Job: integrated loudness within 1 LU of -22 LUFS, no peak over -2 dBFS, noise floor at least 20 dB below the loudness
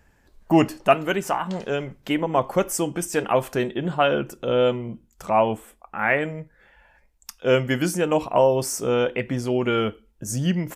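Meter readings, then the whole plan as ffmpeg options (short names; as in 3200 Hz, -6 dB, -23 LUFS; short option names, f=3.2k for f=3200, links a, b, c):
loudness -23.0 LUFS; peak -4.0 dBFS; loudness target -22.0 LUFS
-> -af "volume=1dB"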